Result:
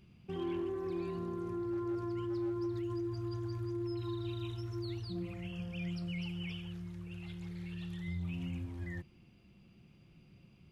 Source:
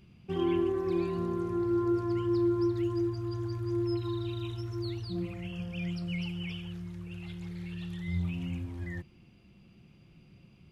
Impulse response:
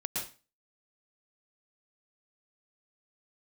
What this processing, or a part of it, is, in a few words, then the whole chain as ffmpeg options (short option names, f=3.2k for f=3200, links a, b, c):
clipper into limiter: -af "asoftclip=type=hard:threshold=-23dB,alimiter=level_in=4dB:limit=-24dB:level=0:latency=1:release=41,volume=-4dB,volume=-3.5dB"